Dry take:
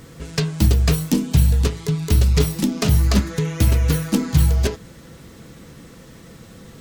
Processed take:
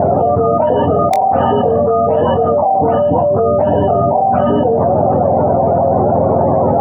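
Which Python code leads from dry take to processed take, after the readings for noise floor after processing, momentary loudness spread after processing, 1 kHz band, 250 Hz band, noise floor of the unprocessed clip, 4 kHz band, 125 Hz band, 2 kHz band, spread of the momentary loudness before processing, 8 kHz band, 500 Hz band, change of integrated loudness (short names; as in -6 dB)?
-13 dBFS, 0 LU, +25.5 dB, +5.5 dB, -44 dBFS, n/a, -1.0 dB, -1.0 dB, 8 LU, under -15 dB, +20.0 dB, +6.5 dB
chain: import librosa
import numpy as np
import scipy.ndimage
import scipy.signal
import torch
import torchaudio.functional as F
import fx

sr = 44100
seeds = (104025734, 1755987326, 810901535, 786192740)

p1 = fx.octave_mirror(x, sr, pivot_hz=440.0)
p2 = fx.ladder_lowpass(p1, sr, hz=780.0, resonance_pct=75)
p3 = fx.small_body(p2, sr, hz=(240.0, 520.0), ring_ms=25, db=13)
p4 = (np.mod(10.0 ** (8.0 / 20.0) * p3 + 1.0, 2.0) - 1.0) / 10.0 ** (8.0 / 20.0)
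p5 = p3 + F.gain(torch.from_numpy(p4), -4.5).numpy()
p6 = fx.doubler(p5, sr, ms=22.0, db=-9.5)
p7 = fx.env_flatten(p6, sr, amount_pct=100)
y = F.gain(torch.from_numpy(p7), -1.5).numpy()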